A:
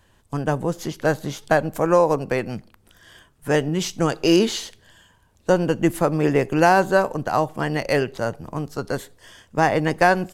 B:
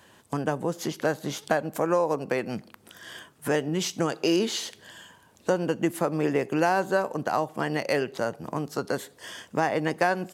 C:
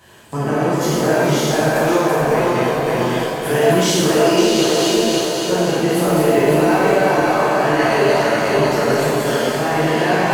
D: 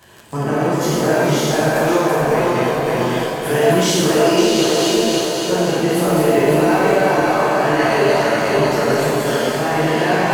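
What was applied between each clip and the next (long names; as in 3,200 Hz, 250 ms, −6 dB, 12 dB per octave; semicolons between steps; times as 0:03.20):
high-pass filter 170 Hz 12 dB per octave; downward compressor 2 to 1, threshold −37 dBFS, peak gain reduction 14.5 dB; level +6 dB
feedback delay that plays each chunk backwards 276 ms, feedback 68%, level −2 dB; brickwall limiter −17.5 dBFS, peak gain reduction 10 dB; reverb with rising layers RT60 1.3 s, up +7 semitones, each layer −8 dB, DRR −8 dB; level +2.5 dB
surface crackle 29 per second −27 dBFS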